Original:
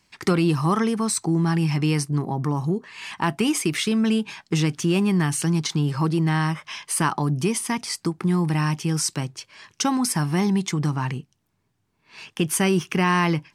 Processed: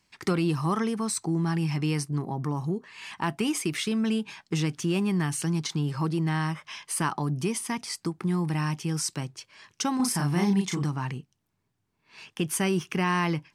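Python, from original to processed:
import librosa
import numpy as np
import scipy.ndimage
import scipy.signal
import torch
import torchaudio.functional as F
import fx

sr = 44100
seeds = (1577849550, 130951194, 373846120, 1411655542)

y = fx.doubler(x, sr, ms=35.0, db=-2.0, at=(9.96, 10.84))
y = y * librosa.db_to_amplitude(-5.5)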